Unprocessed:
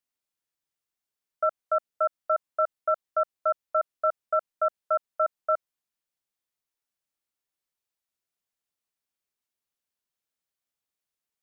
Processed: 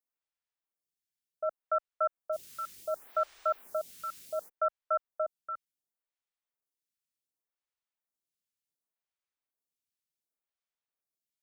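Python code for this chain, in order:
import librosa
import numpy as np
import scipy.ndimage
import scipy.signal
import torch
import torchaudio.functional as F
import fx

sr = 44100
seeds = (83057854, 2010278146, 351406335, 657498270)

y = fx.quant_dither(x, sr, seeds[0], bits=8, dither='triangular', at=(2.32, 4.48), fade=0.02)
y = fx.stagger_phaser(y, sr, hz=0.68)
y = F.gain(torch.from_numpy(y), -3.5).numpy()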